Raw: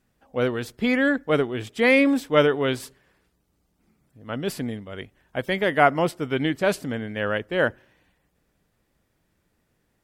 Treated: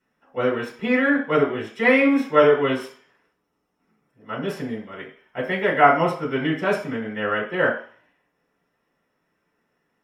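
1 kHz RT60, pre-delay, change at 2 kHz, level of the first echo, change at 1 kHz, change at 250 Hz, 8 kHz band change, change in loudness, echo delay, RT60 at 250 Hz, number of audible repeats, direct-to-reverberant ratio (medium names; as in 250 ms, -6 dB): 0.50 s, 3 ms, +2.0 dB, no echo, +4.5 dB, +1.0 dB, no reading, +2.0 dB, no echo, 0.35 s, no echo, -6.5 dB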